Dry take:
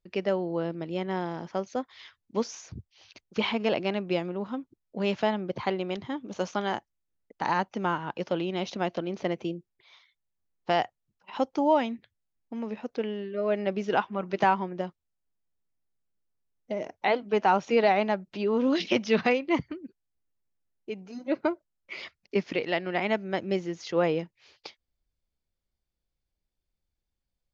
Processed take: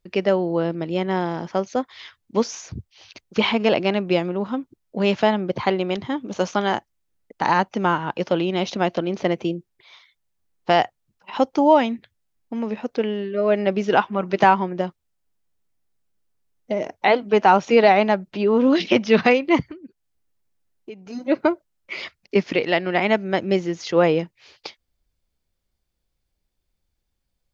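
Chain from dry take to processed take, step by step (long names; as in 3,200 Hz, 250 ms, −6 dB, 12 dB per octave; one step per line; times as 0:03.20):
0:18.31–0:19.14: high-shelf EQ 4,300 Hz −7 dB
0:19.71–0:21.07: downward compressor 2.5 to 1, threshold −47 dBFS, peak gain reduction 11.5 dB
level +8 dB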